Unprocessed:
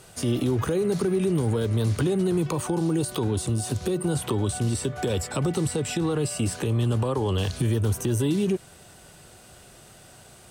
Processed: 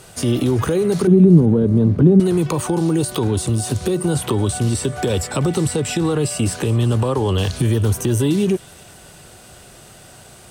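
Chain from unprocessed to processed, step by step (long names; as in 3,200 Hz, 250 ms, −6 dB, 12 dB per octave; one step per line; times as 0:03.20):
0:01.07–0:02.20: drawn EQ curve 120 Hz 0 dB, 170 Hz +11 dB, 8,100 Hz −28 dB
on a send: delay with a high-pass on its return 382 ms, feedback 48%, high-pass 1,900 Hz, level −19 dB
on the sum: level +6.5 dB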